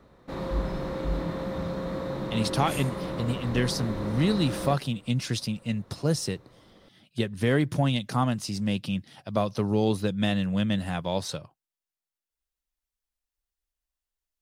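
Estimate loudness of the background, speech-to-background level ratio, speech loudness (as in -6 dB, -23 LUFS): -33.0 LUFS, 5.0 dB, -28.0 LUFS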